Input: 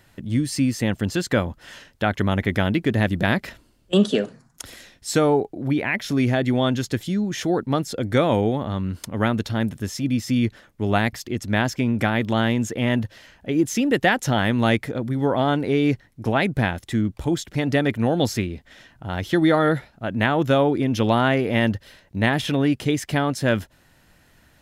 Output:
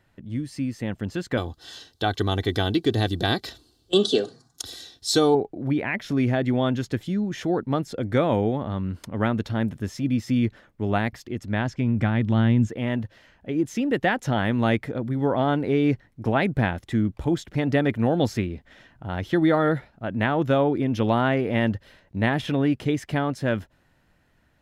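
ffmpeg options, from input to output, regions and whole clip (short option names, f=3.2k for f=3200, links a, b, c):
-filter_complex "[0:a]asettb=1/sr,asplit=3[a][b][c];[a]atrim=end=1.374[d];[b]atrim=start=1.37:end=5.35,asetpts=PTS-STARTPTS,afade=t=in:d=0.004:c=qsin,afade=t=out:st=3.976:d=0.004:c=qsin,highpass=69,highshelf=f=3k:t=q:w=3:g=9,aecho=1:1:2.6:0.59,atrim=end_sample=175518[e];[c]atrim=start=5.346[f];[d][e]acrossfade=d=0.004:c1=hsin:c2=qsin[g];[g][f]acrossfade=d=0.004:c1=qsin:c2=hsin,asettb=1/sr,asplit=3[h][i][j];[h]atrim=end=11.454[k];[i]atrim=start=11.45:end=12.69,asetpts=PTS-STARTPTS,afade=t=in:d=0.004:c=qsin,afade=t=out:st=1.236:d=0.004:c=qsin,lowpass=8.5k,asubboost=boost=9.5:cutoff=250[l];[j]atrim=start=12.686[m];[k][l]acrossfade=d=0.004:c1=hsin:c2=qsin[n];[n][m]acrossfade=d=0.004:c1=qsin:c2=hsin,highshelf=f=3.8k:g=-10.5,dynaudnorm=f=210:g=13:m=11.5dB,volume=-7.5dB"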